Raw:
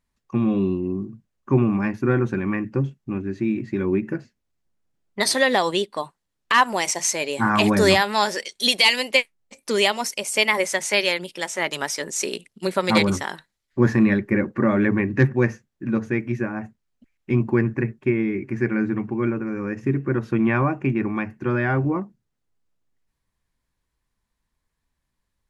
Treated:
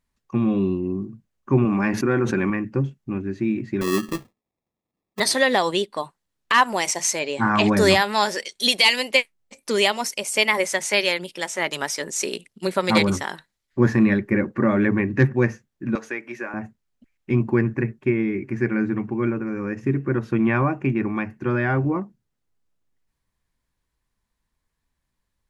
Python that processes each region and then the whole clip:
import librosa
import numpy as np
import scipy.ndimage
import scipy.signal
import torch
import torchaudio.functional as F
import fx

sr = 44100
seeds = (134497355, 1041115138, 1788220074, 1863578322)

y = fx.chain(x, sr, fx.highpass(hz=230.0, slope=6),
    fx.env_flatten(amount_pct=70), at=(1.65, 2.5))
y = fx.chain(y, sr, fx.highpass(hz=150.0, slope=12),
    fx.sample_hold(seeds[0], rate_hz=1500.0, jitter_pct=0), at=(3.81, 5.2))
y = fx.chain(y, sr, fx.lowpass(hz=7400.0, slope=24),
    fx.high_shelf(hz=5300.0, db=-4.0), at=(7.19, 7.77))
y = fx.chain(y, sr, fx.highpass(hz=550.0, slope=12),
    fx.band_squash(depth_pct=70), at=(15.95, 16.54))